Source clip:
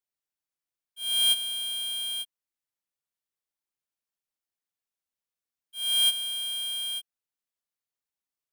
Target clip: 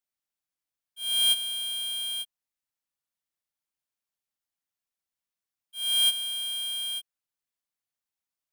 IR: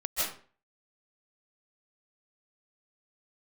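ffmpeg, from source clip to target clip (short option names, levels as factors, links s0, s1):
-af "equalizer=f=420:t=o:w=0.38:g=-6.5"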